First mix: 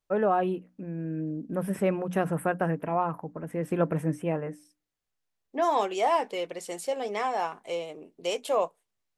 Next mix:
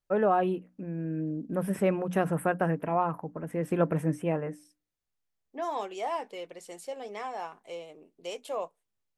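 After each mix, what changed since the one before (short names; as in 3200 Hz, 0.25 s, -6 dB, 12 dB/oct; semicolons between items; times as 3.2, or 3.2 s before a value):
second voice -8.0 dB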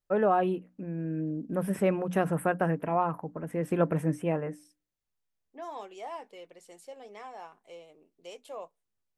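second voice -7.5 dB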